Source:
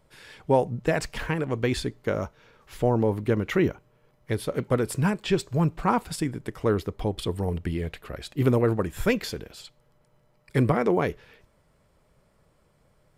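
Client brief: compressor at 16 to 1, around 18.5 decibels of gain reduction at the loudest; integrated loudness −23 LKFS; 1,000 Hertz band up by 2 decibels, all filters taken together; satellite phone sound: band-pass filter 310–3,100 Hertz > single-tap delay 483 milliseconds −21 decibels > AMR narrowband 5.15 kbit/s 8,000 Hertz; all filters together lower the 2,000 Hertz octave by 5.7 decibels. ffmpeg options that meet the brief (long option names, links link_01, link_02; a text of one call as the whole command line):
ffmpeg -i in.wav -af "equalizer=frequency=1000:width_type=o:gain=4.5,equalizer=frequency=2000:width_type=o:gain=-8.5,acompressor=threshold=-35dB:ratio=16,highpass=310,lowpass=3100,aecho=1:1:483:0.0891,volume=23dB" -ar 8000 -c:a libopencore_amrnb -b:a 5150 out.amr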